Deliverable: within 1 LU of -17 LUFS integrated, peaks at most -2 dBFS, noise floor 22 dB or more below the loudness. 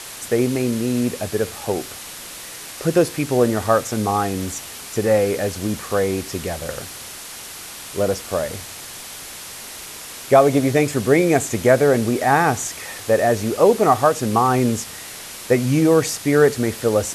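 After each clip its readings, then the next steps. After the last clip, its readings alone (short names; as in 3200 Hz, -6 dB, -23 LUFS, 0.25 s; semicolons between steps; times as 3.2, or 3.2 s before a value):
noise floor -36 dBFS; noise floor target -41 dBFS; loudness -19.0 LUFS; peak -1.5 dBFS; loudness target -17.0 LUFS
-> denoiser 6 dB, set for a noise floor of -36 dBFS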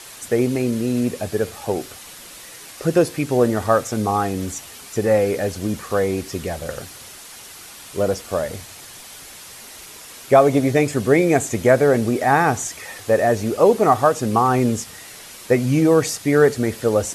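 noise floor -40 dBFS; noise floor target -41 dBFS
-> denoiser 6 dB, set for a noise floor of -40 dBFS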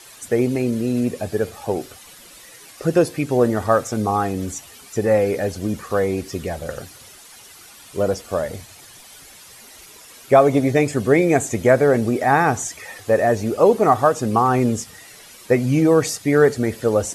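noise floor -44 dBFS; loudness -19.5 LUFS; peak -1.5 dBFS; loudness target -17.0 LUFS
-> gain +2.5 dB; limiter -2 dBFS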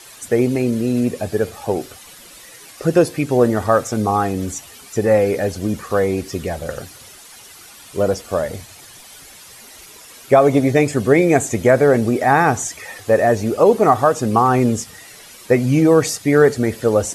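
loudness -17.0 LUFS; peak -2.0 dBFS; noise floor -42 dBFS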